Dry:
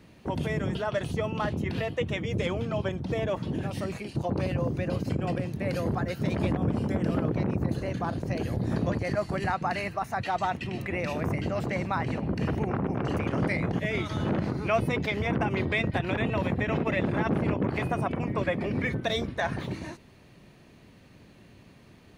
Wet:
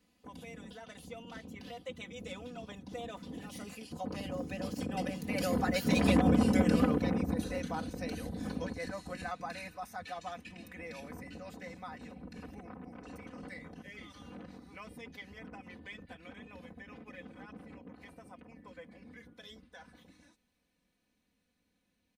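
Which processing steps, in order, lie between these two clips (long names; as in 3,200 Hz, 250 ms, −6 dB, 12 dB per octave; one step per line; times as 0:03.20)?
source passing by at 0:06.31, 20 m/s, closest 11 metres
high-shelf EQ 3,700 Hz +11.5 dB
comb filter 4 ms, depth 90%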